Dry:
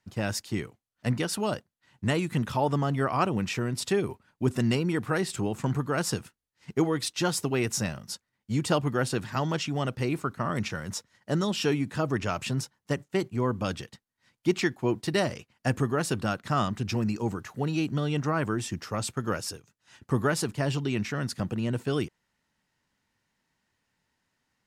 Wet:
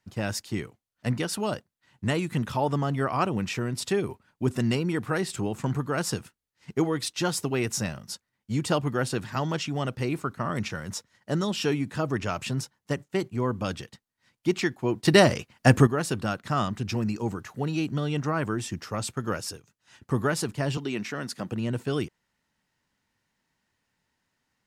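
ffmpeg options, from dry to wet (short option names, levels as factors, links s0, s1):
-filter_complex "[0:a]asettb=1/sr,asplit=3[s0][s1][s2];[s0]atrim=end=20.774[s3];[s1]atrim=start=20.77:end=21.52,asetpts=PTS-STARTPTS,afade=t=in:d=0.004:c=qsin,afade=t=out:st=0.746:d=0.004:c=qsin,highpass=210[s4];[s2]atrim=start=21.516[s5];[s3][s4]acrossfade=d=0.004:c1=hsin:c2=qsin[s6];[s6][s5]acrossfade=d=0.004:c1=qsin:c2=hsin,asplit=3[s7][s8][s9];[s7]atrim=end=15.052[s10];[s8]atrim=start=15.048:end=15.872,asetpts=PTS-STARTPTS,volume=2.82[s11];[s9]atrim=start=15.868[s12];[s10][s11]acrossfade=d=0.004:c1=hsin:c2=hsin[s13];[s13][s12]acrossfade=d=0.004:c1=hsin:c2=hsin"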